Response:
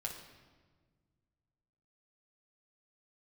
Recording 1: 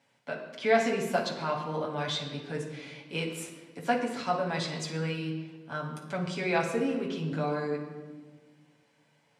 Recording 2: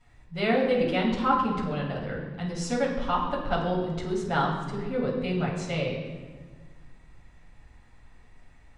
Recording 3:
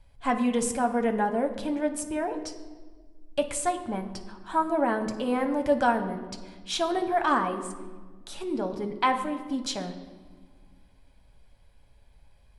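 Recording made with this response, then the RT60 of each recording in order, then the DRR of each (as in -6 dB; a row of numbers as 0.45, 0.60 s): 1; 1.5, 1.5, 1.5 s; -1.5, -10.0, 5.0 dB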